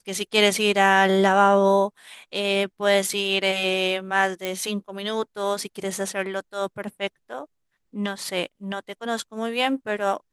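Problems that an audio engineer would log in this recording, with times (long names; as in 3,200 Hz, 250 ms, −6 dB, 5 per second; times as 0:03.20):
0:04.45: click −12 dBFS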